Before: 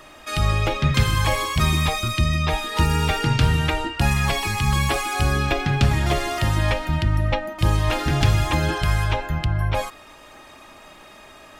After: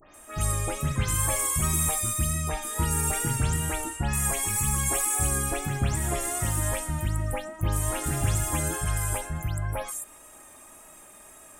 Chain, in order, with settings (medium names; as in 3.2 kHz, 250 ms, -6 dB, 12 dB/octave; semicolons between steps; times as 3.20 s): delay that grows with frequency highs late, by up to 141 ms; wow and flutter 26 cents; resonant high shelf 6.2 kHz +13 dB, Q 3; trim -7.5 dB